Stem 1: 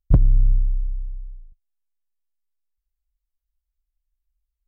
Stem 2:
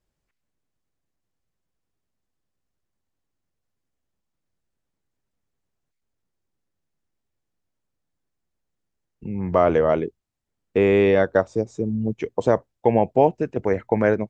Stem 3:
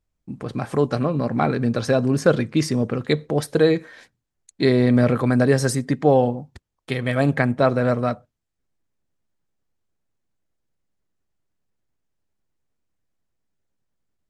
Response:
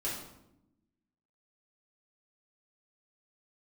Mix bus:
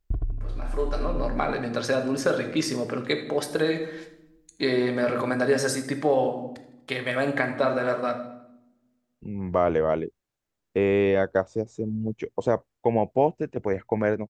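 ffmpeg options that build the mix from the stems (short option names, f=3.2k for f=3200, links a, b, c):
-filter_complex "[0:a]aecho=1:1:2.8:0.87,volume=-1dB,asplit=2[a][b];[b]volume=-20dB[c];[1:a]volume=-8.5dB[d];[2:a]highpass=f=560:p=1,volume=-5.5dB,asplit=3[e][f][g];[f]volume=-9dB[h];[g]volume=-18dB[i];[a][e]amix=inputs=2:normalize=0,equalizer=f=10k:w=1.8:g=-5.5,acompressor=threshold=-26dB:ratio=6,volume=0dB[j];[3:a]atrim=start_sample=2205[k];[h][k]afir=irnorm=-1:irlink=0[l];[c][i]amix=inputs=2:normalize=0,aecho=0:1:80|160|240|320|400|480|560:1|0.5|0.25|0.125|0.0625|0.0312|0.0156[m];[d][j][l][m]amix=inputs=4:normalize=0,dynaudnorm=f=170:g=9:m=4dB"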